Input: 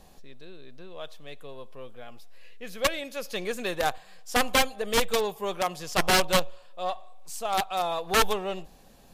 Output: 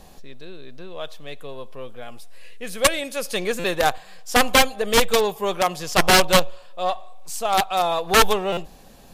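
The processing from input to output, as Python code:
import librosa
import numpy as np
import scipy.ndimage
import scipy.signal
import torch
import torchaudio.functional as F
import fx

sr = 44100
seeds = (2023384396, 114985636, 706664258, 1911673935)

y = fx.peak_eq(x, sr, hz=9100.0, db=9.5, octaves=0.47, at=(2.02, 3.39))
y = fx.buffer_glitch(y, sr, at_s=(3.59, 8.52), block=256, repeats=8)
y = y * librosa.db_to_amplitude(7.0)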